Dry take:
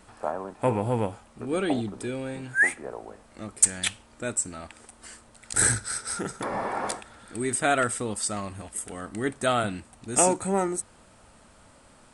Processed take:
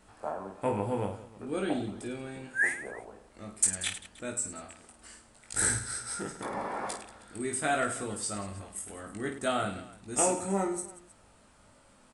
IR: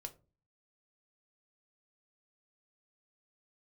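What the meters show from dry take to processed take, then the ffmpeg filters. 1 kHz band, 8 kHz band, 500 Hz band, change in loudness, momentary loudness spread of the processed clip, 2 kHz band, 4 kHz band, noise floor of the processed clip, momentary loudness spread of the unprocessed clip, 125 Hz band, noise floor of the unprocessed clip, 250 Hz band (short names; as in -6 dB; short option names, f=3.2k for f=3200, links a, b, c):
-5.5 dB, -5.0 dB, -5.0 dB, -5.5 dB, 17 LU, -5.5 dB, -5.0 dB, -60 dBFS, 19 LU, -6.5 dB, -55 dBFS, -5.0 dB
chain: -af "aecho=1:1:20|52|103.2|185.1|316.2:0.631|0.398|0.251|0.158|0.1,volume=-7.5dB"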